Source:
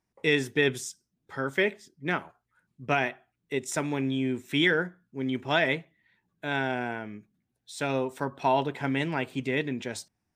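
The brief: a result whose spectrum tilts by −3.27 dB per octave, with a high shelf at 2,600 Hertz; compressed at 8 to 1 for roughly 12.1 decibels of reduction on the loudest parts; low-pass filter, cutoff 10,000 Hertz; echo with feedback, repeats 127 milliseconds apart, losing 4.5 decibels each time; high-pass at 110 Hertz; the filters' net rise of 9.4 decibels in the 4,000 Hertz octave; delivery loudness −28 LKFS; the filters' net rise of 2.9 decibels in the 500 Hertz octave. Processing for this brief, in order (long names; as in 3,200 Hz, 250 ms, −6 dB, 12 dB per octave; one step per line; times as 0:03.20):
high-pass filter 110 Hz
low-pass filter 10,000 Hz
parametric band 500 Hz +3.5 dB
high-shelf EQ 2,600 Hz +4.5 dB
parametric band 4,000 Hz +8.5 dB
downward compressor 8 to 1, threshold −27 dBFS
repeating echo 127 ms, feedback 60%, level −4.5 dB
level +3.5 dB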